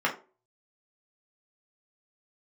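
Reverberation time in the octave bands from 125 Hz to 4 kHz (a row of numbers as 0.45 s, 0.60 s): 0.30 s, 0.40 s, 0.40 s, 0.30 s, 0.25 s, 0.20 s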